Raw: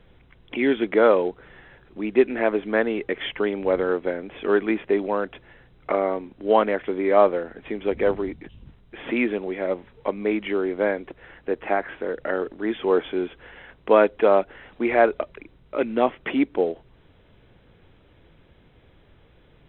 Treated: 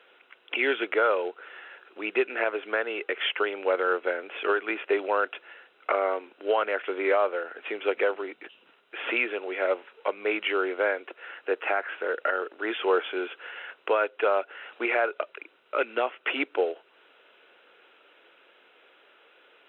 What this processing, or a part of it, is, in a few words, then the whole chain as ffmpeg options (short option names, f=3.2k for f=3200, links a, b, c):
laptop speaker: -af "highpass=f=400:w=0.5412,highpass=f=400:w=1.3066,equalizer=f=1.4k:t=o:w=0.34:g=10.5,equalizer=f=2.7k:t=o:w=0.4:g=10,alimiter=limit=-14dB:level=0:latency=1:release=392"